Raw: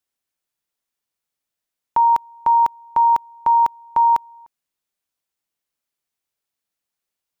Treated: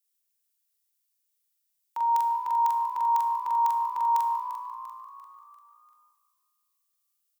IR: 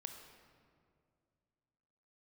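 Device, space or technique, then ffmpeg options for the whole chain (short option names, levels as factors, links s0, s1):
stairwell: -filter_complex "[0:a]highpass=99,aderivative,asplit=2[s0][s1];[s1]adelay=43,volume=0.75[s2];[s0][s2]amix=inputs=2:normalize=0[s3];[1:a]atrim=start_sample=2205[s4];[s3][s4]afir=irnorm=-1:irlink=0,asplit=6[s5][s6][s7][s8][s9][s10];[s6]adelay=345,afreqshift=58,volume=0.251[s11];[s7]adelay=690,afreqshift=116,volume=0.123[s12];[s8]adelay=1035,afreqshift=174,volume=0.0603[s13];[s9]adelay=1380,afreqshift=232,volume=0.0295[s14];[s10]adelay=1725,afreqshift=290,volume=0.0145[s15];[s5][s11][s12][s13][s14][s15]amix=inputs=6:normalize=0,volume=2.11"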